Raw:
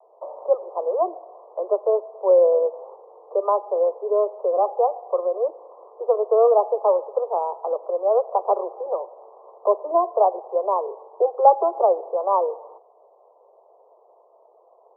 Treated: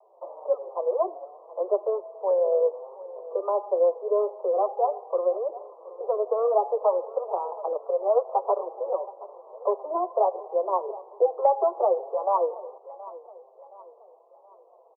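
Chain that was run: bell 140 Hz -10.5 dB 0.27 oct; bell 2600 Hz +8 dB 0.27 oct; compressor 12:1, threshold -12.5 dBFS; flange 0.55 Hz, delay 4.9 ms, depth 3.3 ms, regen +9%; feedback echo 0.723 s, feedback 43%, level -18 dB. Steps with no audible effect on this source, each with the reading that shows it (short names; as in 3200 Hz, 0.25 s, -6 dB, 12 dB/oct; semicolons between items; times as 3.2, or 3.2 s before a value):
bell 140 Hz: input band starts at 320 Hz; bell 2600 Hz: input band ends at 1300 Hz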